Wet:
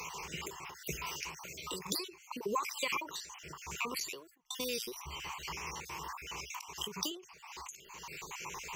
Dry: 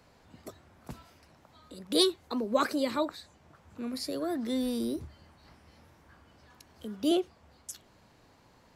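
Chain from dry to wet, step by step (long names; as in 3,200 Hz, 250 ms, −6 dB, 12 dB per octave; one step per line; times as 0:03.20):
time-frequency cells dropped at random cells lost 42%
tilt shelving filter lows −9.5 dB, about 700 Hz
0:04.00–0:04.96: noise gate −38 dBFS, range −44 dB
downward compressor 2.5 to 1, threshold −52 dBFS, peak gain reduction 21.5 dB
EQ curve with evenly spaced ripples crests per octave 0.75, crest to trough 16 dB
every ending faded ahead of time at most 120 dB per second
level +14 dB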